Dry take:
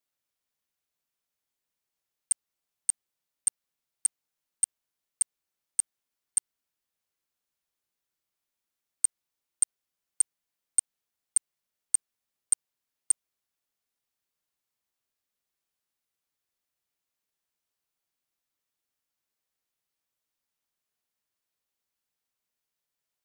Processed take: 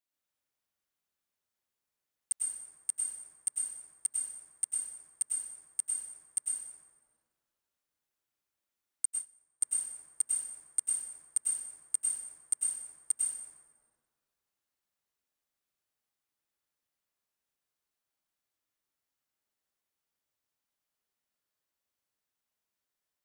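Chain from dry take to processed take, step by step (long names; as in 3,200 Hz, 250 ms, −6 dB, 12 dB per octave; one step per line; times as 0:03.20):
dense smooth reverb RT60 1.8 s, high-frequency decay 0.45×, pre-delay 85 ms, DRR −4.5 dB
0:09.05–0:09.63: expander for the loud parts 2.5 to 1, over −34 dBFS
level −6.5 dB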